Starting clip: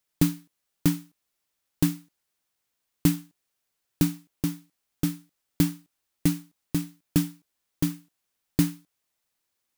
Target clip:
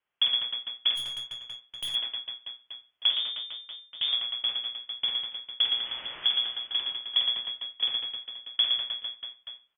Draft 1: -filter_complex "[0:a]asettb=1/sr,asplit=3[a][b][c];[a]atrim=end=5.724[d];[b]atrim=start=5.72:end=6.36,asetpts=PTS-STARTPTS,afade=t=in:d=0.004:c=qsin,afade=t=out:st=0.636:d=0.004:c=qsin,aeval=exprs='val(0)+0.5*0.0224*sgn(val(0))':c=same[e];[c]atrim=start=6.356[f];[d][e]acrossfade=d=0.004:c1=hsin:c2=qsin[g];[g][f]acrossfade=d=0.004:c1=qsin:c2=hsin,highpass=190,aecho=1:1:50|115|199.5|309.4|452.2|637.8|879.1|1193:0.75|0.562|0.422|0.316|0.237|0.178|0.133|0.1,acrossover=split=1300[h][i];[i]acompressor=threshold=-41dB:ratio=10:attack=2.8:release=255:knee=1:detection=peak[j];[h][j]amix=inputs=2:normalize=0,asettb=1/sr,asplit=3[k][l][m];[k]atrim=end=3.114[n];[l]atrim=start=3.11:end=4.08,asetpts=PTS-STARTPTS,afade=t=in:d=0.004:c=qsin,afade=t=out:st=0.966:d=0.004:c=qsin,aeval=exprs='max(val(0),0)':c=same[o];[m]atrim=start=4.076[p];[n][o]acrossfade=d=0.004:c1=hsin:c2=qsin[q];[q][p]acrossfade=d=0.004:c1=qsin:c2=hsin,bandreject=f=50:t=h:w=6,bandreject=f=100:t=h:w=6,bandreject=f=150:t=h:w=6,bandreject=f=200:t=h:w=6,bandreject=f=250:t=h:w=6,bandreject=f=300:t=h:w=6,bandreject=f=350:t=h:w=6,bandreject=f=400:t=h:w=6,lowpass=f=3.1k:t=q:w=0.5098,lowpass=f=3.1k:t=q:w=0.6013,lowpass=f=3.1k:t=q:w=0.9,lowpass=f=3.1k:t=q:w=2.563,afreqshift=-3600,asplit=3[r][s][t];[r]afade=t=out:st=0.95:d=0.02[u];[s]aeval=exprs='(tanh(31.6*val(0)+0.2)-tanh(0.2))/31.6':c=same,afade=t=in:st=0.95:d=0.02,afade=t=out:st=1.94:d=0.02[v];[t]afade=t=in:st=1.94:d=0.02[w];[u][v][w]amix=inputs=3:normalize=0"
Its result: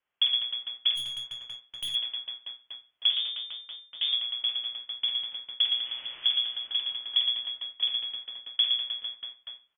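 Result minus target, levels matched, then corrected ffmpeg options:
compressor: peak gain reduction +9.5 dB
-filter_complex "[0:a]asettb=1/sr,asplit=3[a][b][c];[a]atrim=end=5.724[d];[b]atrim=start=5.72:end=6.36,asetpts=PTS-STARTPTS,afade=t=in:d=0.004:c=qsin,afade=t=out:st=0.636:d=0.004:c=qsin,aeval=exprs='val(0)+0.5*0.0224*sgn(val(0))':c=same[e];[c]atrim=start=6.356[f];[d][e]acrossfade=d=0.004:c1=hsin:c2=qsin[g];[g][f]acrossfade=d=0.004:c1=qsin:c2=hsin,highpass=190,aecho=1:1:50|115|199.5|309.4|452.2|637.8|879.1|1193:0.75|0.562|0.422|0.316|0.237|0.178|0.133|0.1,acrossover=split=1300[h][i];[i]acompressor=threshold=-30.5dB:ratio=10:attack=2.8:release=255:knee=1:detection=peak[j];[h][j]amix=inputs=2:normalize=0,asettb=1/sr,asplit=3[k][l][m];[k]atrim=end=3.114[n];[l]atrim=start=3.11:end=4.08,asetpts=PTS-STARTPTS,afade=t=in:d=0.004:c=qsin,afade=t=out:st=0.966:d=0.004:c=qsin,aeval=exprs='max(val(0),0)':c=same[o];[m]atrim=start=4.076[p];[n][o]acrossfade=d=0.004:c1=hsin:c2=qsin[q];[q][p]acrossfade=d=0.004:c1=qsin:c2=hsin,bandreject=f=50:t=h:w=6,bandreject=f=100:t=h:w=6,bandreject=f=150:t=h:w=6,bandreject=f=200:t=h:w=6,bandreject=f=250:t=h:w=6,bandreject=f=300:t=h:w=6,bandreject=f=350:t=h:w=6,bandreject=f=400:t=h:w=6,lowpass=f=3.1k:t=q:w=0.5098,lowpass=f=3.1k:t=q:w=0.6013,lowpass=f=3.1k:t=q:w=0.9,lowpass=f=3.1k:t=q:w=2.563,afreqshift=-3600,asplit=3[r][s][t];[r]afade=t=out:st=0.95:d=0.02[u];[s]aeval=exprs='(tanh(31.6*val(0)+0.2)-tanh(0.2))/31.6':c=same,afade=t=in:st=0.95:d=0.02,afade=t=out:st=1.94:d=0.02[v];[t]afade=t=in:st=1.94:d=0.02[w];[u][v][w]amix=inputs=3:normalize=0"

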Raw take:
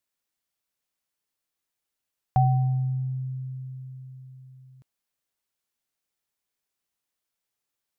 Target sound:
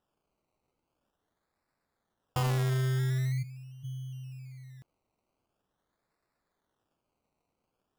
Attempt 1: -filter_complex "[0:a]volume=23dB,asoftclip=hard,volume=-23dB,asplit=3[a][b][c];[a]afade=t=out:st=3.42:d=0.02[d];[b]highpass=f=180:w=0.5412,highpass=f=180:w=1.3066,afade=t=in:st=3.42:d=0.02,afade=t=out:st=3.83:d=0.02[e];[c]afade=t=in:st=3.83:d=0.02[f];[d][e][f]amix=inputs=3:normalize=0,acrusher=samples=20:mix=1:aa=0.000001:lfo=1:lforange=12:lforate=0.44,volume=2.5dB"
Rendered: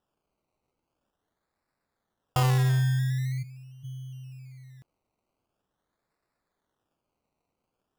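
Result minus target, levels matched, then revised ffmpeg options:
overloaded stage: distortion -5 dB
-filter_complex "[0:a]volume=29.5dB,asoftclip=hard,volume=-29.5dB,asplit=3[a][b][c];[a]afade=t=out:st=3.42:d=0.02[d];[b]highpass=f=180:w=0.5412,highpass=f=180:w=1.3066,afade=t=in:st=3.42:d=0.02,afade=t=out:st=3.83:d=0.02[e];[c]afade=t=in:st=3.83:d=0.02[f];[d][e][f]amix=inputs=3:normalize=0,acrusher=samples=20:mix=1:aa=0.000001:lfo=1:lforange=12:lforate=0.44,volume=2.5dB"

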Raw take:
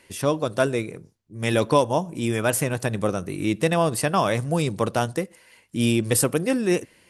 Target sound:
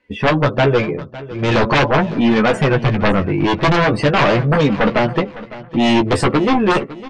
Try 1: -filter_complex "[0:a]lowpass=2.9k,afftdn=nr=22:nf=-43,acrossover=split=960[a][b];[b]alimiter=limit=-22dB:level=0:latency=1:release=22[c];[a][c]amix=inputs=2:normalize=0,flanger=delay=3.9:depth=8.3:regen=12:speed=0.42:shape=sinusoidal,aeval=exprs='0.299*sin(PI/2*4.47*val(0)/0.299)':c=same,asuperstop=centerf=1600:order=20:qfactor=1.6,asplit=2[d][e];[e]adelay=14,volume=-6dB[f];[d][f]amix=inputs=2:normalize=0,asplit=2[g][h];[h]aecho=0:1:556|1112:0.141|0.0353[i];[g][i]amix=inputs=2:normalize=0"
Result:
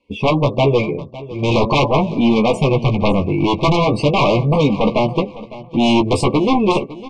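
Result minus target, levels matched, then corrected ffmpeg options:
2000 Hz band -5.5 dB
-filter_complex "[0:a]lowpass=2.9k,afftdn=nr=22:nf=-43,acrossover=split=960[a][b];[b]alimiter=limit=-22dB:level=0:latency=1:release=22[c];[a][c]amix=inputs=2:normalize=0,flanger=delay=3.9:depth=8.3:regen=12:speed=0.42:shape=sinusoidal,aeval=exprs='0.299*sin(PI/2*4.47*val(0)/0.299)':c=same,asplit=2[d][e];[e]adelay=14,volume=-6dB[f];[d][f]amix=inputs=2:normalize=0,asplit=2[g][h];[h]aecho=0:1:556|1112:0.141|0.0353[i];[g][i]amix=inputs=2:normalize=0"

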